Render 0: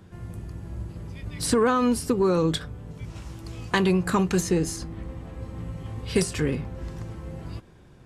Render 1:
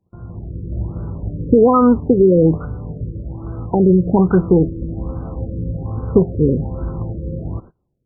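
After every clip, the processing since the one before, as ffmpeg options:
-af "agate=range=-25dB:threshold=-45dB:ratio=16:detection=peak,dynaudnorm=f=150:g=7:m=8dB,afftfilt=real='re*lt(b*sr/1024,550*pow(1600/550,0.5+0.5*sin(2*PI*1.2*pts/sr)))':imag='im*lt(b*sr/1024,550*pow(1600/550,0.5+0.5*sin(2*PI*1.2*pts/sr)))':win_size=1024:overlap=0.75,volume=3.5dB"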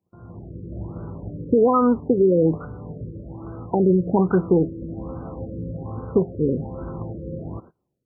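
-af "highpass=f=210:p=1,dynaudnorm=f=150:g=3:m=3.5dB,volume=-5dB"

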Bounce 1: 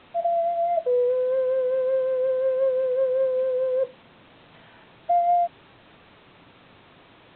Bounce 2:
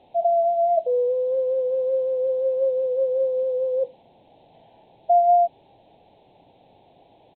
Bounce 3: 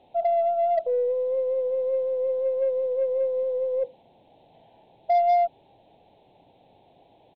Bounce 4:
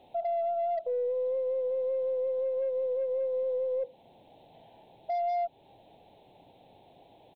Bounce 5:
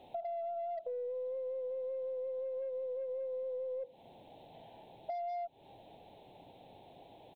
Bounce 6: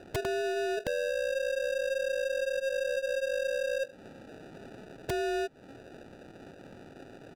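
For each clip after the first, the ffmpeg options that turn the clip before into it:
-af "firequalizer=gain_entry='entry(240,0);entry(810,11);entry(1200,-24);entry(2300,-8);entry(4100,-1)':delay=0.05:min_phase=1,volume=-5dB"
-af "aeval=exprs='0.299*(cos(1*acos(clip(val(0)/0.299,-1,1)))-cos(1*PI/2))+0.0168*(cos(5*acos(clip(val(0)/0.299,-1,1)))-cos(5*PI/2))+0.0075*(cos(7*acos(clip(val(0)/0.299,-1,1)))-cos(7*PI/2))+0.00237*(cos(8*acos(clip(val(0)/0.299,-1,1)))-cos(8*PI/2))':c=same,volume=-3.5dB"
-af "crystalizer=i=1:c=0,alimiter=level_in=2dB:limit=-24dB:level=0:latency=1:release=261,volume=-2dB"
-af "acompressor=threshold=-39dB:ratio=6,volume=1dB"
-af "acrusher=samples=41:mix=1:aa=0.000001,aemphasis=mode=reproduction:type=50fm,aeval=exprs='(mod(44.7*val(0)+1,2)-1)/44.7':c=same,volume=7.5dB"

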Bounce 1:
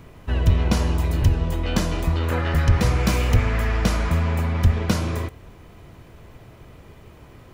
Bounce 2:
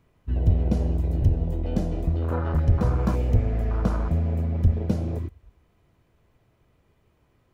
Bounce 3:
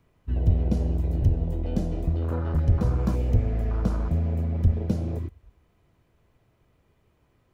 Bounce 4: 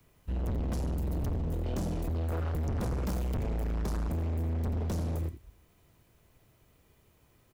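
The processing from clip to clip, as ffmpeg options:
-af "afwtdn=0.0631,volume=-2.5dB"
-filter_complex "[0:a]acrossover=split=490|3000[a][b][c];[b]acompressor=threshold=-41dB:ratio=2[d];[a][d][c]amix=inputs=3:normalize=0,volume=-1dB"
-filter_complex "[0:a]acrossover=split=190|310|1200[a][b][c][d];[d]crystalizer=i=2.5:c=0[e];[a][b][c][e]amix=inputs=4:normalize=0,aecho=1:1:86:0.237,volume=29.5dB,asoftclip=hard,volume=-29.5dB"

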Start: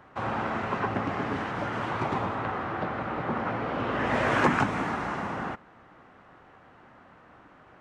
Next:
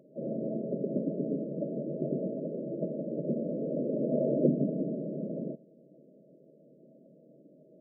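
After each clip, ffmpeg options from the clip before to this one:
-af "afftfilt=real='re*between(b*sr/4096,130,660)':imag='im*between(b*sr/4096,130,660)':win_size=4096:overlap=0.75,volume=1dB"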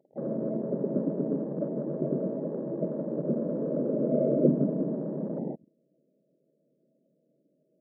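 -af "afwtdn=0.00794,volume=3dB"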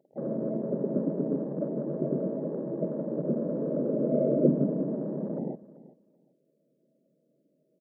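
-af "aecho=1:1:385|770:0.119|0.0214"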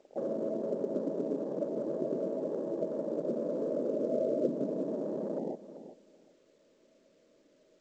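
-af "highpass=340,acompressor=threshold=-44dB:ratio=2,volume=7.5dB" -ar 16000 -c:a pcm_alaw

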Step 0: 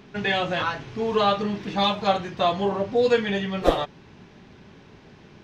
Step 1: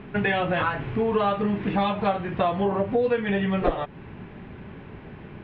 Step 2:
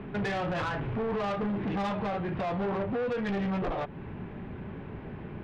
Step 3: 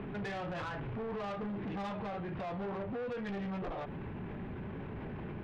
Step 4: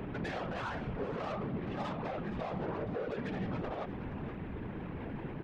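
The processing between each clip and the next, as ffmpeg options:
-af "lowpass=f=2.7k:w=0.5412,lowpass=f=2.7k:w=1.3066,lowshelf=f=130:g=5.5,acompressor=threshold=-27dB:ratio=4,volume=6dB"
-filter_complex "[0:a]equalizer=f=3.4k:w=0.53:g=-5.5,acrossover=split=190[a][b];[b]alimiter=limit=-20dB:level=0:latency=1:release=13[c];[a][c]amix=inputs=2:normalize=0,asoftclip=type=tanh:threshold=-29dB,volume=1.5dB"
-af "alimiter=level_in=14.5dB:limit=-24dB:level=0:latency=1:release=31,volume=-14.5dB,volume=3dB"
-af "afftfilt=real='hypot(re,im)*cos(2*PI*random(0))':imag='hypot(re,im)*sin(2*PI*random(1))':win_size=512:overlap=0.75,aecho=1:1:471:0.224,volume=7dB"

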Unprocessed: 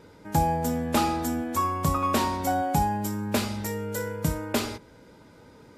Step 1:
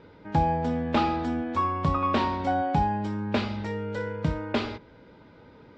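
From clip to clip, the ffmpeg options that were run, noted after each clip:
-af "lowpass=f=4k:w=0.5412,lowpass=f=4k:w=1.3066"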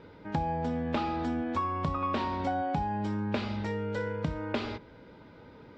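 -af "acompressor=threshold=-28dB:ratio=4"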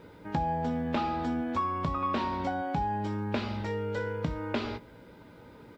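-filter_complex "[0:a]acrusher=bits=11:mix=0:aa=0.000001,asplit=2[a][b];[b]adelay=17,volume=-10.5dB[c];[a][c]amix=inputs=2:normalize=0"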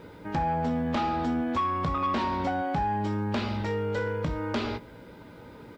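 -af "aeval=exprs='0.188*sin(PI/2*2.51*val(0)/0.188)':c=same,volume=-7.5dB"

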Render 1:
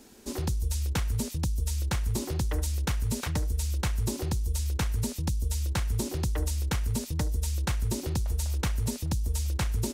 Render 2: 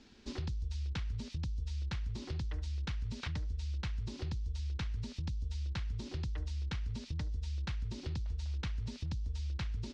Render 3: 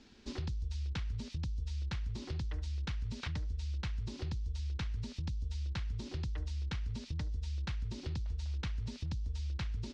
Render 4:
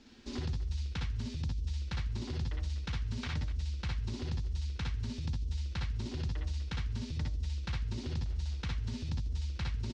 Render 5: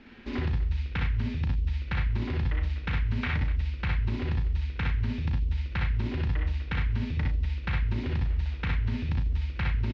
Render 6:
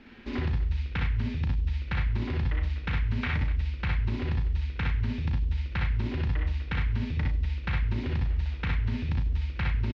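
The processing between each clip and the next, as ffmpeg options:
-af "lowpass=f=4.7k:w=0.5412,lowpass=f=4.7k:w=1.3066,equalizer=f=560:t=o:w=2.4:g=-10,acompressor=threshold=-34dB:ratio=5,volume=-1dB"
-af anull
-af "aecho=1:1:57|65|77|247:0.531|0.668|0.299|0.211"
-filter_complex "[0:a]lowpass=f=2.2k:t=q:w=1.9,asplit=2[a][b];[b]adelay=36,volume=-8dB[c];[a][c]amix=inputs=2:normalize=0,volume=6.5dB"
-filter_complex "[0:a]asplit=2[a][b];[b]adelay=100,highpass=300,lowpass=3.4k,asoftclip=type=hard:threshold=-27.5dB,volume=-20dB[c];[a][c]amix=inputs=2:normalize=0"

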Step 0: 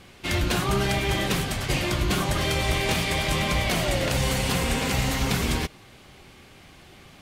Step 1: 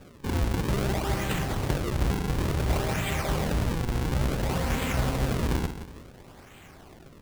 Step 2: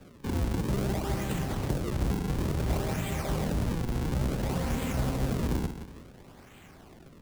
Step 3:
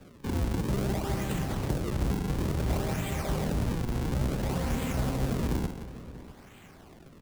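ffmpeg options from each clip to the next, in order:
-filter_complex "[0:a]aecho=1:1:179|358|537|716:0.224|0.0873|0.0341|0.0133,acrossover=split=140[a][b];[b]acompressor=threshold=-27dB:ratio=6[c];[a][c]amix=inputs=2:normalize=0,acrusher=samples=41:mix=1:aa=0.000001:lfo=1:lforange=65.6:lforate=0.57"
-filter_complex "[0:a]equalizer=f=210:t=o:w=1.2:g=3.5,acrossover=split=140|950|4600[a][b][c][d];[c]alimiter=level_in=5.5dB:limit=-24dB:level=0:latency=1:release=293,volume=-5.5dB[e];[a][b][e][d]amix=inputs=4:normalize=0,volume=-3.5dB"
-filter_complex "[0:a]asplit=2[a][b];[b]adelay=641.4,volume=-16dB,highshelf=f=4k:g=-14.4[c];[a][c]amix=inputs=2:normalize=0"

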